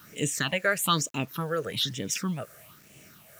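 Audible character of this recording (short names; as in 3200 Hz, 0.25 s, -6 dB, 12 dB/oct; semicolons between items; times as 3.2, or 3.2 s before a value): tremolo triangle 2.4 Hz, depth 45%; phasing stages 6, 1.1 Hz, lowest notch 240–1300 Hz; a quantiser's noise floor 10-bit, dither none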